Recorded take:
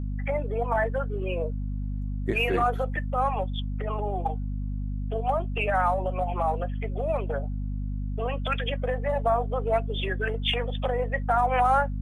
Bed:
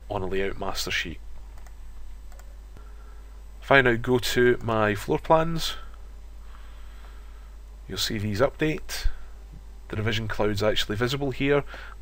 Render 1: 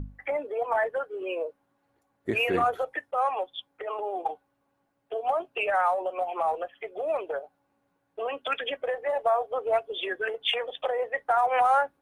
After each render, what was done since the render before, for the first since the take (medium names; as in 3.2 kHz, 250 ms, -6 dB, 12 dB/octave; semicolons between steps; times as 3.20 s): hum notches 50/100/150/200/250 Hz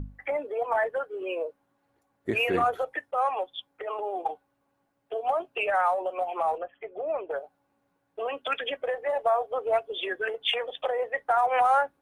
6.58–7.31 s: distance through air 490 m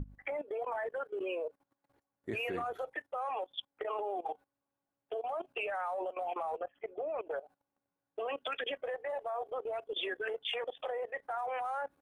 level held to a coarse grid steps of 18 dB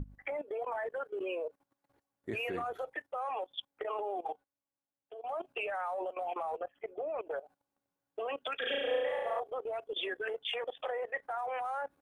4.31–5.31 s: dip -10 dB, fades 0.13 s; 8.58–9.40 s: flutter echo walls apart 6.1 m, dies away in 1.4 s; 10.66–11.26 s: dynamic bell 1.6 kHz, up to +5 dB, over -51 dBFS, Q 1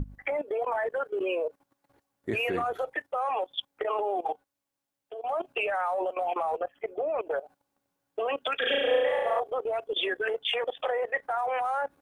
trim +7.5 dB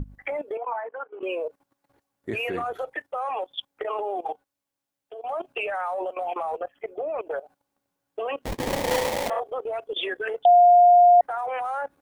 0.57–1.23 s: cabinet simulation 370–2300 Hz, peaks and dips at 390 Hz -8 dB, 580 Hz -7 dB, 940 Hz +4 dB, 1.8 kHz -9 dB; 8.42–9.30 s: sample-rate reducer 1.4 kHz, jitter 20%; 10.45–11.21 s: bleep 707 Hz -10.5 dBFS